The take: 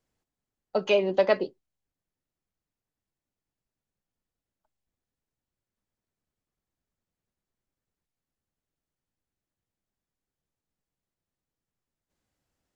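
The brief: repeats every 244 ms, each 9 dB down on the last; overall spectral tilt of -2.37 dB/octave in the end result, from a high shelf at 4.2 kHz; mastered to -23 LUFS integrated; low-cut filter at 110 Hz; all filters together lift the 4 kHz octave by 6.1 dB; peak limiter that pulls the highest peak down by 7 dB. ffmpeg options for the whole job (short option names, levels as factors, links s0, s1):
-af "highpass=110,equalizer=f=4000:t=o:g=7,highshelf=f=4200:g=3.5,alimiter=limit=0.211:level=0:latency=1,aecho=1:1:244|488|732|976:0.355|0.124|0.0435|0.0152,volume=1.68"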